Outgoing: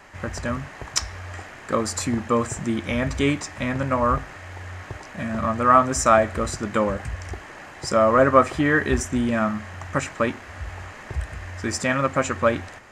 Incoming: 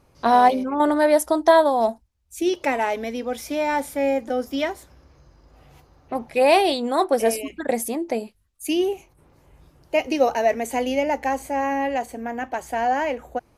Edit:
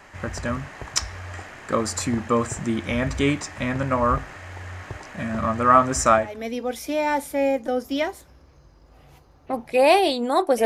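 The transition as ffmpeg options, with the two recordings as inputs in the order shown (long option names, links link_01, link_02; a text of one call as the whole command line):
ffmpeg -i cue0.wav -i cue1.wav -filter_complex "[0:a]apad=whole_dur=10.65,atrim=end=10.65,atrim=end=6.47,asetpts=PTS-STARTPTS[link_01];[1:a]atrim=start=2.73:end=7.27,asetpts=PTS-STARTPTS[link_02];[link_01][link_02]acrossfade=duration=0.36:curve1=qua:curve2=qua" out.wav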